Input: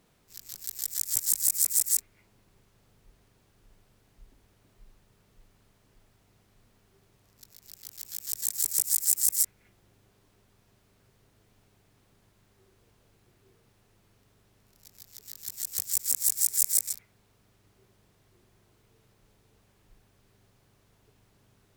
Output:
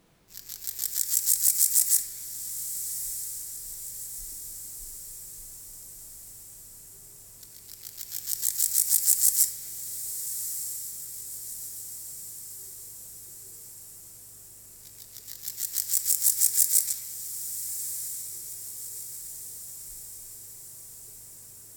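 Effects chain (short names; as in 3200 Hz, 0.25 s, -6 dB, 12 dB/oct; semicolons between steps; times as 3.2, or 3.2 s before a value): on a send: diffused feedback echo 1.289 s, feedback 60%, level -10 dB; on the sum: shoebox room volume 690 m³, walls mixed, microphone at 0.7 m; gain +2.5 dB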